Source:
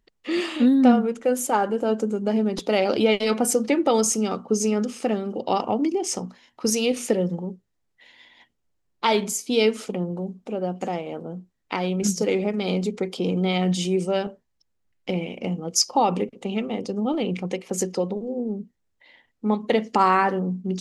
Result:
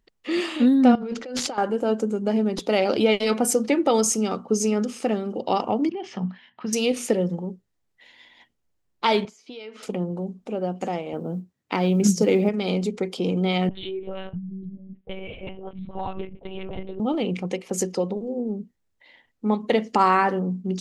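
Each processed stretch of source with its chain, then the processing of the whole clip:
0.95–1.58 negative-ratio compressor -30 dBFS + wrapped overs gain 17 dB + synth low-pass 4700 Hz, resonance Q 3.2
5.89–6.73 compressor 3:1, threshold -25 dBFS + speaker cabinet 120–3600 Hz, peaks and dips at 130 Hz +5 dB, 190 Hz +10 dB, 300 Hz -10 dB, 500 Hz -8 dB, 1700 Hz +8 dB, 3100 Hz +6 dB
9.25–9.83 HPF 790 Hz 6 dB/oct + compressor 8:1, threshold -33 dBFS + air absorption 220 m
11.13–12.49 HPF 91 Hz 24 dB/oct + low shelf 380 Hz +7 dB + short-mantissa float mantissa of 6-bit
13.69–17 compressor 3:1, threshold -25 dBFS + three bands offset in time mids, highs, lows 30/650 ms, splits 220/740 Hz + monotone LPC vocoder at 8 kHz 190 Hz
whole clip: dry

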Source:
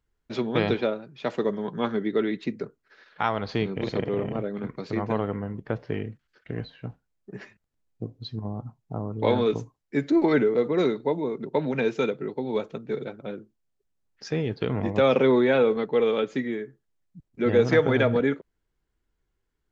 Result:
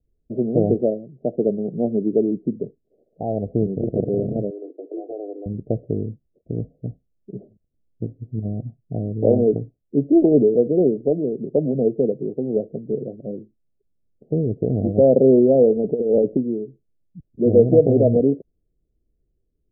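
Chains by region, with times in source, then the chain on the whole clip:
4.5–5.46 steep high-pass 290 Hz 96 dB/oct + dynamic EQ 740 Hz, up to +7 dB, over -48 dBFS, Q 5.4 + compressor 2:1, threshold -35 dBFS
15.84–16.37 negative-ratio compressor -25 dBFS, ratio -0.5 + sample leveller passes 1
whole clip: Wiener smoothing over 41 samples; steep low-pass 720 Hz 96 dB/oct; gain +7 dB

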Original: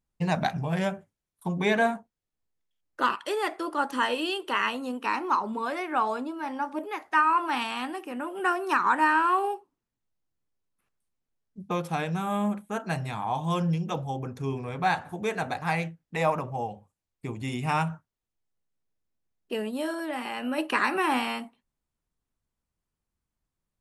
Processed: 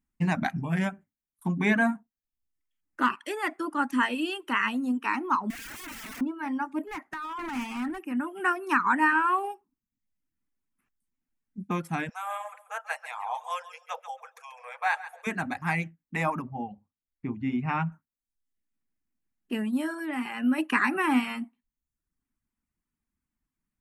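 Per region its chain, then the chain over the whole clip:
5.5–6.21 compressor 16:1, threshold -30 dBFS + wrapped overs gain 34.5 dB
6.87–8.07 bell 8400 Hz -5 dB 2.9 oct + negative-ratio compressor -29 dBFS + overloaded stage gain 32 dB
12.09–15.27 brick-wall FIR high-pass 460 Hz + feedback echo 0.137 s, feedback 28%, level -9.5 dB
16.42–17.92 air absorption 240 m + mismatched tape noise reduction decoder only
whole clip: graphic EQ 125/250/500/2000/4000 Hz -4/+11/-11/+5/-8 dB; reverb removal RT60 0.64 s

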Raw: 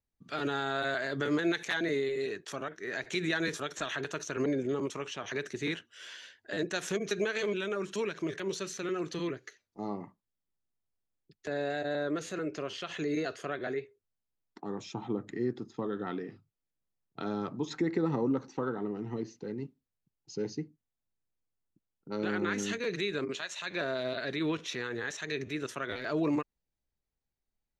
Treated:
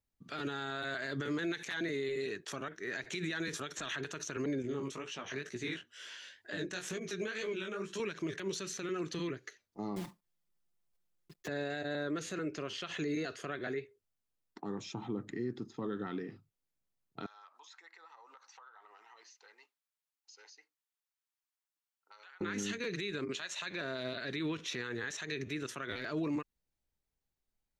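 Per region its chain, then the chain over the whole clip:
4.62–8 chorus 2.1 Hz, delay 16.5 ms, depth 6.2 ms + mismatched tape noise reduction encoder only
9.96–11.49 block floating point 3-bit + comb 5.7 ms, depth 97%
17.26–22.41 HPF 920 Hz 24 dB/oct + compressor, threshold -54 dBFS
whole clip: dynamic EQ 650 Hz, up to -6 dB, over -45 dBFS, Q 1; limiter -28 dBFS

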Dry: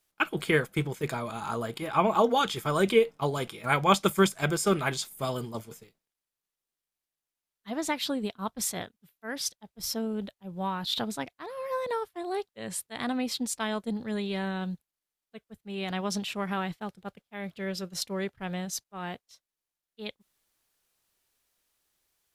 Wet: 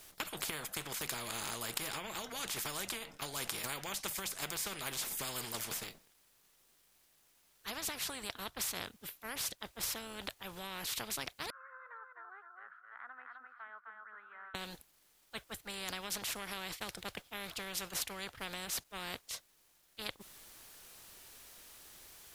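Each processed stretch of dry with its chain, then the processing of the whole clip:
11.5–14.55 Butterworth band-pass 1400 Hz, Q 7.9 + air absorption 460 m + feedback echo 0.259 s, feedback 16%, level -6 dB
whole clip: compressor 8:1, threshold -35 dBFS; spectral compressor 4:1; gain +6 dB

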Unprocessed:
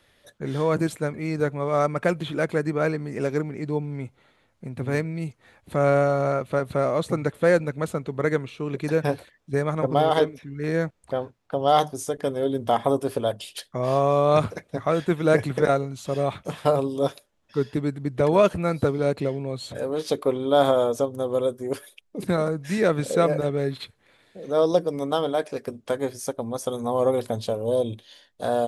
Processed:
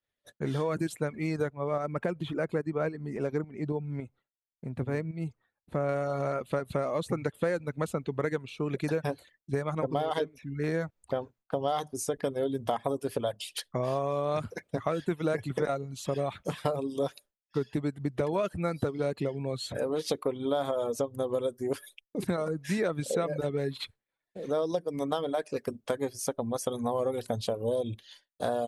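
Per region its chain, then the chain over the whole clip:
1.5–5.89 high shelf 2100 Hz -9 dB + tremolo saw up 3.6 Hz, depth 40%
whole clip: expander -45 dBFS; reverb removal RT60 0.58 s; compressor 6:1, threshold -26 dBFS

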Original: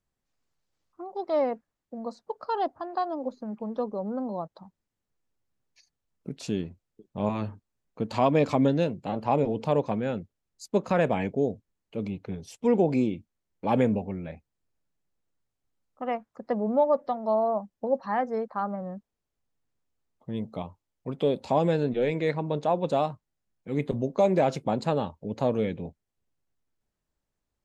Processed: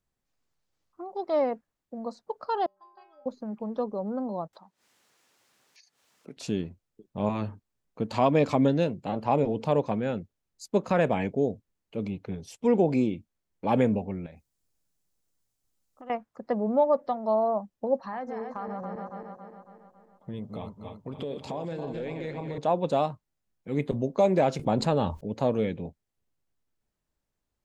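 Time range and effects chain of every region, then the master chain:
2.66–3.26 low shelf 450 Hz -6.5 dB + metallic resonator 190 Hz, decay 0.68 s, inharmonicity 0.008
4.53–6.37 weighting filter A + upward compressor, threshold -51 dBFS + mismatched tape noise reduction encoder only
14.26–16.1 tone controls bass +1 dB, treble +11 dB + compressor 4:1, threshold -45 dBFS
17.99–22.58 regenerating reverse delay 0.138 s, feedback 71%, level -7 dB + compressor 4:1, threshold -32 dBFS
24.59–25.21 low shelf 65 Hz +10.5 dB + fast leveller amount 50%
whole clip: dry

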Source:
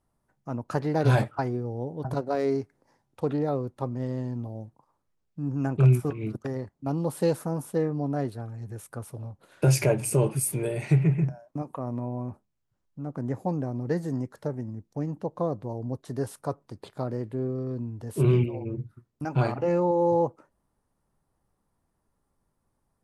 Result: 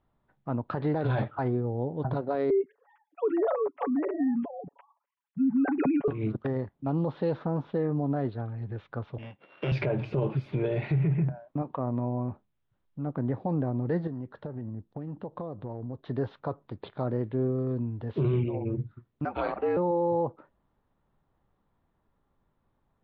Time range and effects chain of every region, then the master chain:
2.5–6.08 sine-wave speech + comb 7.1 ms, depth 59%
9.18–9.72 sample sorter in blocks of 16 samples + BPF 190–4000 Hz
14.07–16.05 bell 2200 Hz -6.5 dB 0.26 oct + compressor 12:1, threshold -34 dBFS + mismatched tape noise reduction decoder only
19.25–19.77 HPF 480 Hz + frequency shift -61 Hz
whole clip: elliptic low-pass 3700 Hz, stop band 60 dB; dynamic EQ 2500 Hz, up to -4 dB, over -54 dBFS, Q 1.6; limiter -22.5 dBFS; gain +3 dB

